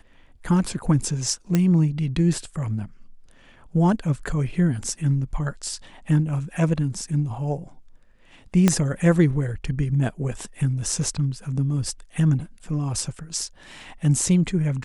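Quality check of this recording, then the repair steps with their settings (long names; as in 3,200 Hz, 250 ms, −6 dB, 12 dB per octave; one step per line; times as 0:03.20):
0:01.55: click −8 dBFS
0:08.68: click −4 dBFS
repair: click removal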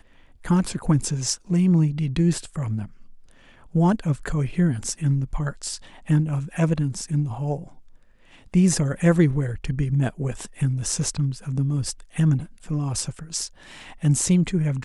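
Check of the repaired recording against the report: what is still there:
0:08.68: click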